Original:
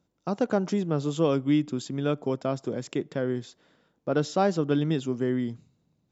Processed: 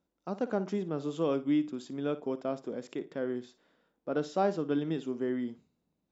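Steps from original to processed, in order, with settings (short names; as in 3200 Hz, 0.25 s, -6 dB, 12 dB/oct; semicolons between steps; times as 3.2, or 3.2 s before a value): bell 120 Hz -14.5 dB 0.83 oct; harmonic-percussive split harmonic +4 dB; high shelf 4300 Hz -8 dB; flutter echo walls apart 9.7 m, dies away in 0.23 s; gain -7 dB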